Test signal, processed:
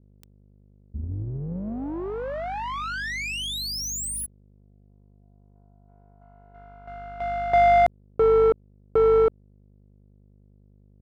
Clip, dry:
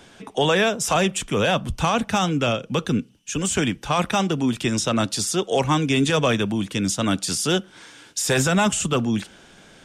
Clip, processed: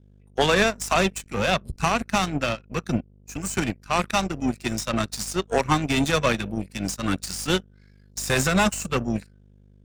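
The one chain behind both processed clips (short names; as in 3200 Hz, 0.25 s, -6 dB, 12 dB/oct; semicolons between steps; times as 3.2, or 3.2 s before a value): spectral noise reduction 18 dB; hum 50 Hz, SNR 12 dB; power-law curve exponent 2; gain +5 dB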